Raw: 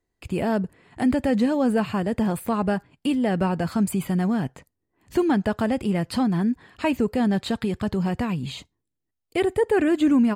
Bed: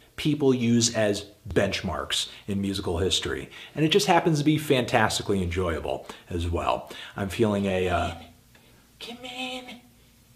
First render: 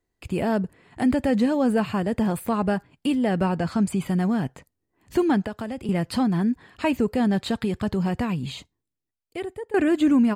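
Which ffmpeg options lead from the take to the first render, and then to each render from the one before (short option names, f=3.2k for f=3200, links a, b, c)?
-filter_complex "[0:a]asettb=1/sr,asplit=3[a][b][c];[a]atrim=end=3.564[d];[b]atrim=start=3.56:end=4.06,asetpts=PTS-STARTPTS,afade=t=in:d=0.004:c=qsin,afade=t=out:st=0.496:d=0.004:c=qsin,lowpass=8.3k[e];[c]atrim=start=4.056[f];[d][e]acrossfade=d=0.004:c1=hsin:c2=qsin[g];[g][f]acrossfade=d=0.004:c1=qsin:c2=hsin,asettb=1/sr,asplit=3[h][i][j];[h]atrim=end=5.454[k];[i]atrim=start=5.45:end=5.89,asetpts=PTS-STARTPTS,afade=t=in:d=0.004:c=qsin,afade=t=out:st=0.436:d=0.004:c=qsin,acrossover=split=180|2800[l][m][n];[l]acompressor=threshold=-42dB:ratio=4[o];[m]acompressor=threshold=-30dB:ratio=4[p];[n]acompressor=threshold=-51dB:ratio=4[q];[o][p][q]amix=inputs=3:normalize=0[r];[j]atrim=start=5.886[s];[k][r]acrossfade=d=0.004:c1=hsin:c2=qsin[t];[t][s]acrossfade=d=0.004:c1=qsin:c2=hsin,asplit=2[u][v];[u]atrim=end=9.74,asetpts=PTS-STARTPTS,afade=t=out:st=8.45:d=1.29:silence=0.125893[w];[v]atrim=start=9.74,asetpts=PTS-STARTPTS,afade=t=in:d=0.004:c=hsin:silence=0.125893[x];[w][x]concat=n=2:v=0:a=1"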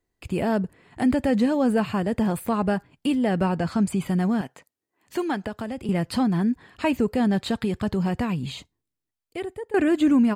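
-filter_complex "[0:a]asettb=1/sr,asplit=3[a][b][c];[a]atrim=end=4.414[d];[b]atrim=start=4.41:end=5.43,asetpts=PTS-STARTPTS,afade=t=in:d=0.004:c=qsin,afade=t=out:st=1.016:d=0.004:c=qsin,highpass=f=570:p=1[e];[c]atrim=start=5.426[f];[d][e]acrossfade=d=0.004:c1=hsin:c2=qsin[g];[g][f]acrossfade=d=0.004:c1=qsin:c2=hsin"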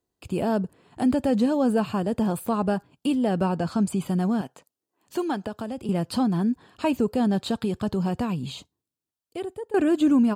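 -af "highpass=f=110:p=1,equalizer=f=2k:t=o:w=0.5:g=-11.5"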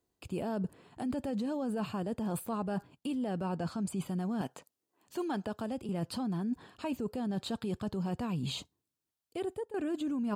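-af "alimiter=limit=-18.5dB:level=0:latency=1,areverse,acompressor=threshold=-32dB:ratio=6,areverse"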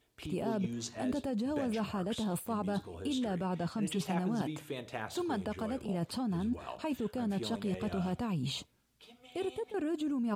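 -filter_complex "[1:a]volume=-18.5dB[a];[0:a][a]amix=inputs=2:normalize=0"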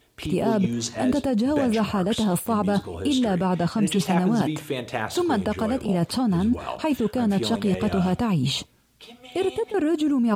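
-af "volume=12dB"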